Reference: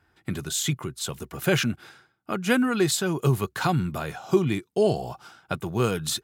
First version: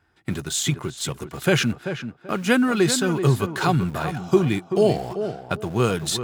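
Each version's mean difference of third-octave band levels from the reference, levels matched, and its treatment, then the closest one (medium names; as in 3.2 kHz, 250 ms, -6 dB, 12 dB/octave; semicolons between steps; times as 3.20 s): 3.5 dB: peaking EQ 14 kHz -13 dB 0.26 oct; in parallel at -7 dB: small samples zeroed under -32 dBFS; on the sum: tape echo 387 ms, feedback 26%, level -7.5 dB, low-pass 1.8 kHz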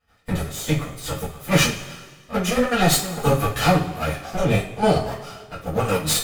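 9.0 dB: comb filter that takes the minimum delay 1.6 ms; trance gate ".x.xxx...xx" 199 bpm -12 dB; two-slope reverb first 0.31 s, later 1.6 s, from -18 dB, DRR -9 dB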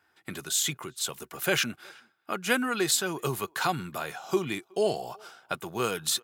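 5.0 dB: high-pass 600 Hz 6 dB/octave; treble shelf 9.3 kHz +3.5 dB; speakerphone echo 370 ms, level -28 dB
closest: first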